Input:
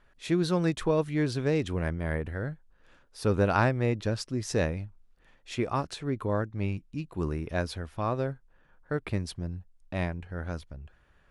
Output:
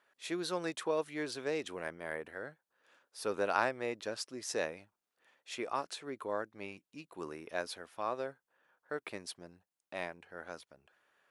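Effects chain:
high-pass filter 440 Hz 12 dB per octave
high-shelf EQ 8,600 Hz +6.5 dB
level −4.5 dB

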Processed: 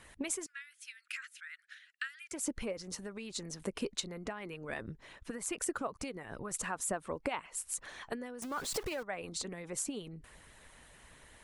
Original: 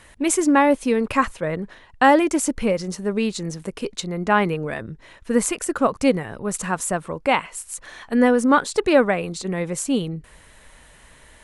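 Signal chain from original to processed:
0:08.42–0:09.03: converter with a step at zero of −20.5 dBFS
downward compressor 6 to 1, threshold −27 dBFS, peak gain reduction 17 dB
harmonic and percussive parts rebalanced harmonic −11 dB
0:00.46–0:02.32: Butterworth high-pass 1,400 Hz 72 dB per octave
level −4 dB

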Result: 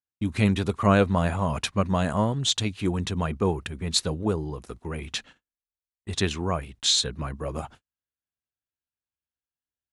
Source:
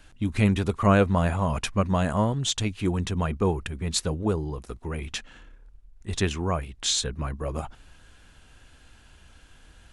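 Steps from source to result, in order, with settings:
high-pass filter 77 Hz 12 dB per octave
noise gate −46 dBFS, range −46 dB
dynamic equaliser 4,000 Hz, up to +6 dB, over −46 dBFS, Q 3

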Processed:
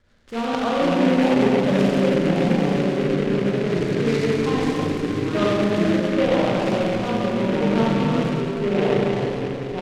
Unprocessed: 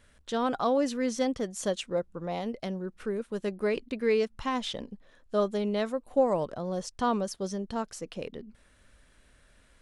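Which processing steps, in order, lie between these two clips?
low-pass filter 2,800 Hz 24 dB per octave
in parallel at +2.5 dB: output level in coarse steps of 18 dB
on the sum: delay with pitch and tempo change per echo 382 ms, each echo −5 semitones, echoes 2
rotating-speaker cabinet horn 7 Hz, later 0.85 Hz, at 0:02.45
on a send: single-tap delay 1,052 ms −11.5 dB
on the sum: four-comb reverb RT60 3.2 s, combs from 31 ms, DRR −7 dB
short delay modulated by noise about 1,800 Hz, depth 0.069 ms
level −1.5 dB

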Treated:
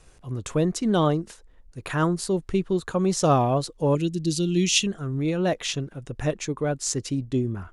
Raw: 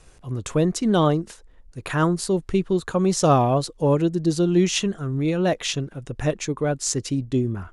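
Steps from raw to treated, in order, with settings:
0:03.95–0:04.87: drawn EQ curve 280 Hz 0 dB, 800 Hz −16 dB, 1,700 Hz −8 dB, 2,600 Hz +6 dB
level −2.5 dB

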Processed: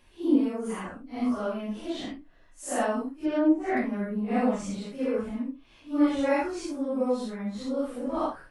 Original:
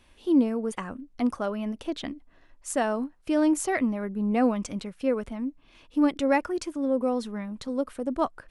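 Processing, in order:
random phases in long frames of 200 ms
0:03.17–0:03.77: treble cut that deepens with the level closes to 890 Hz, closed at −17 dBFS
level −1 dB

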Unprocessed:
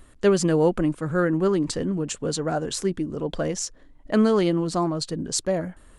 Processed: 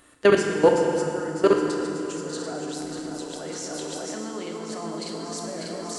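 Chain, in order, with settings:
feedback delay that plays each chunk backwards 297 ms, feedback 81%, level −8 dB
high-pass filter 500 Hz 6 dB per octave
output level in coarse steps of 22 dB
0:02.70–0:03.42: amplitude modulation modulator 140 Hz, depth 45%
feedback delay network reverb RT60 2.6 s, low-frequency decay 1.4×, high-frequency decay 0.85×, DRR 1 dB
level +8.5 dB

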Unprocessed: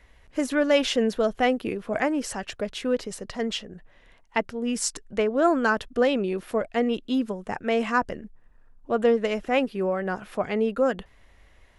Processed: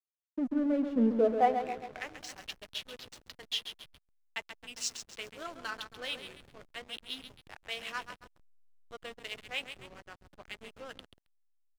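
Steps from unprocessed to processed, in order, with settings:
0:06.82–0:08.98: high-shelf EQ 4,700 Hz +5.5 dB
band-pass filter sweep 210 Hz → 3,600 Hz, 0:00.99–0:01.97
dynamic equaliser 6,500 Hz, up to +5 dB, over −60 dBFS, Q 2.3
flanger 0.38 Hz, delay 5.1 ms, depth 9.5 ms, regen −66%
repeating echo 135 ms, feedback 56%, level −8 dB
slack as between gear wheels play −42.5 dBFS
level +5 dB

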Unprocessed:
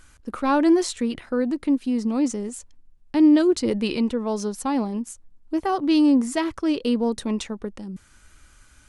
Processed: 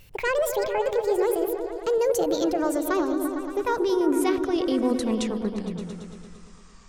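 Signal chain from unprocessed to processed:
gliding playback speed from 183% → 75%
brickwall limiter −18 dBFS, peak gain reduction 9 dB
on a send: echo whose low-pass opens from repeat to repeat 114 ms, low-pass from 400 Hz, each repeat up 1 octave, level −3 dB

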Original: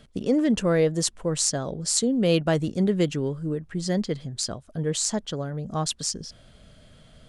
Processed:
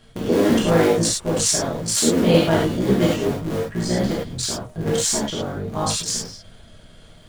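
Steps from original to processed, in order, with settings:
sub-harmonics by changed cycles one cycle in 3, muted
reverb whose tail is shaped and stops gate 130 ms flat, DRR −6 dB

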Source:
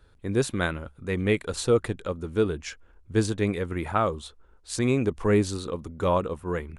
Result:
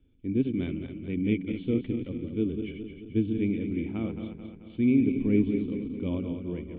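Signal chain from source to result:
feedback delay that plays each chunk backwards 109 ms, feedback 73%, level −7 dB
formant resonators in series i
level +6 dB

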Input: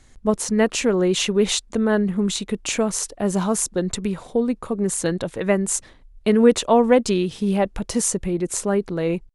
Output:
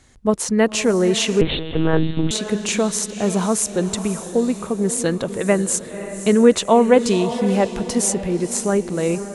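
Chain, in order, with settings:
high-pass filter 61 Hz 6 dB per octave
feedback delay with all-pass diffusion 546 ms, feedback 42%, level −11 dB
0:01.41–0:02.31: one-pitch LPC vocoder at 8 kHz 160 Hz
level +2 dB

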